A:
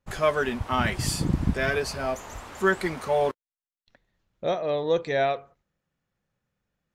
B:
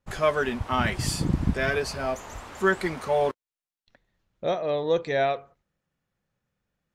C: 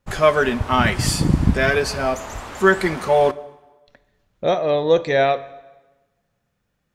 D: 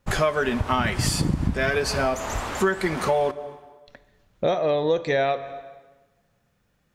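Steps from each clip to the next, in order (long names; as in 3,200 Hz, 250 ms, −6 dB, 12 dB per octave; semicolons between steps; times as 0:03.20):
high-shelf EQ 12,000 Hz −5 dB
dense smooth reverb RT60 1.2 s, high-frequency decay 0.85×, DRR 15.5 dB; level +7.5 dB
downward compressor 5 to 1, threshold −24 dBFS, peak gain reduction 14 dB; level +4 dB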